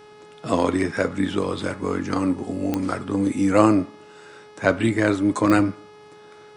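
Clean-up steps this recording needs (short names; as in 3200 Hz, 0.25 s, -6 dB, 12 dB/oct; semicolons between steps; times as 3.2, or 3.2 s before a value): de-click; de-hum 421.4 Hz, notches 14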